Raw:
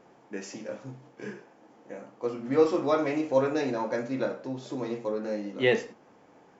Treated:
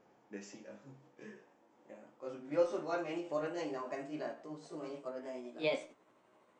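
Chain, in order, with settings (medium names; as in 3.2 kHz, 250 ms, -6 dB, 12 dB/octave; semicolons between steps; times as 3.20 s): pitch bend over the whole clip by +4 st starting unshifted; flange 0.33 Hz, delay 9.4 ms, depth 1.1 ms, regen +74%; trim -5.5 dB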